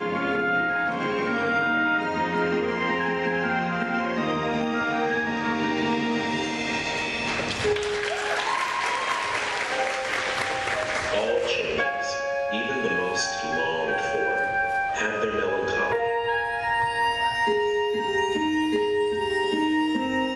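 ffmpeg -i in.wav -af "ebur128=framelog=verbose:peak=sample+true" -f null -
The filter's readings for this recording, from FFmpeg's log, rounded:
Integrated loudness:
  I:         -24.7 LUFS
  Threshold: -34.7 LUFS
Loudness range:
  LRA:         1.4 LU
  Threshold: -44.8 LUFS
  LRA low:   -25.4 LUFS
  LRA high:  -24.0 LUFS
Sample peak:
  Peak:      -12.7 dBFS
True peak:
  Peak:      -12.7 dBFS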